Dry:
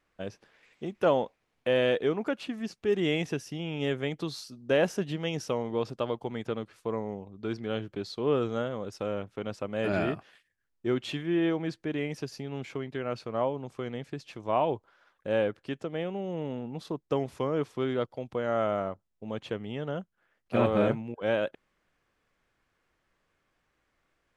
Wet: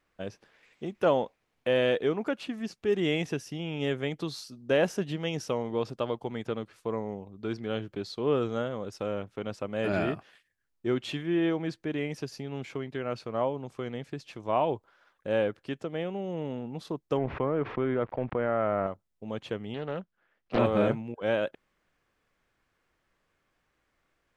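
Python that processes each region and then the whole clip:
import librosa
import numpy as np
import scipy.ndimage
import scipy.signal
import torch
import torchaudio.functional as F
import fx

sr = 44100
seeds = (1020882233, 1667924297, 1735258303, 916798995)

y = fx.chain(x, sr, fx.law_mismatch(coded='A'),
    fx.lowpass(hz=2300.0, slope=24),
    fx.env_flatten(amount_pct=70), at=(17.17, 18.87))
y = fx.chain(y, sr, fx.lowpass(hz=4900.0, slope=12),
    fx.peak_eq(hz=88.0, db=-5.5, octaves=1.1),
    fx.doppler_dist(depth_ms=0.72), at=(19.74, 20.59))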